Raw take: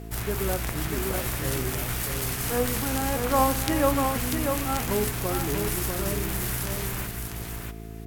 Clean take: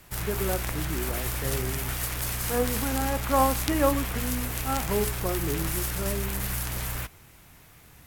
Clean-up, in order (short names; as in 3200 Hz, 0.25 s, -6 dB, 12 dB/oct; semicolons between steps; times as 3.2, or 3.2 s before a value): de-hum 55 Hz, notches 8; notch 690 Hz, Q 30; inverse comb 0.644 s -5 dB